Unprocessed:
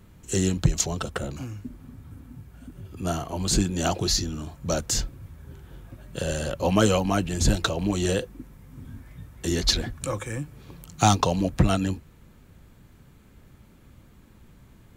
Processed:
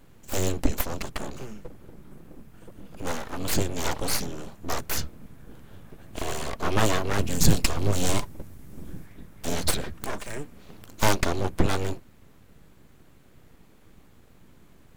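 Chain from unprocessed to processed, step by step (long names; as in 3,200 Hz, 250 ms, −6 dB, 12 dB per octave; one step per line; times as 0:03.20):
full-wave rectification
0:07.19–0:09.06: bass and treble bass +6 dB, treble +6 dB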